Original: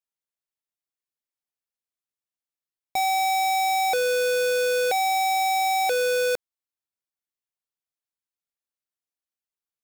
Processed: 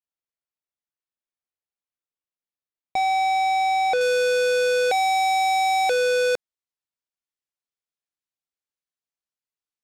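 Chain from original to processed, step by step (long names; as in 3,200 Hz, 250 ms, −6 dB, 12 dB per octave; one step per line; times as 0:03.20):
high-shelf EQ 4,800 Hz −7.5 dB, from 0:04.01 +5.5 dB
leveller curve on the samples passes 1
high-frequency loss of the air 65 metres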